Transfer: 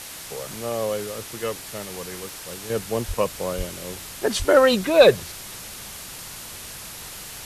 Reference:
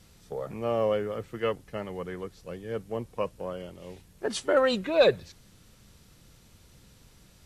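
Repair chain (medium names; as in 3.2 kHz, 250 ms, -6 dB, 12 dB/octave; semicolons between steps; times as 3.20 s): de-click; de-plosive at 3.07/3.57/4.38 s; noise print and reduce 19 dB; trim 0 dB, from 2.70 s -7.5 dB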